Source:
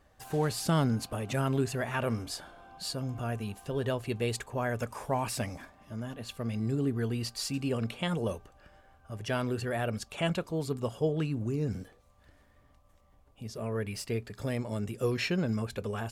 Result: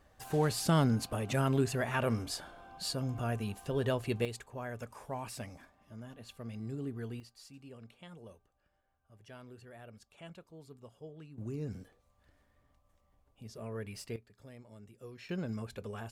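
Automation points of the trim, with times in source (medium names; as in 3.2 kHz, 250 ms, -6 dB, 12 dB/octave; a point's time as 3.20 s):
-0.5 dB
from 4.25 s -9.5 dB
from 7.20 s -20 dB
from 11.38 s -7.5 dB
from 14.16 s -19.5 dB
from 15.29 s -7.5 dB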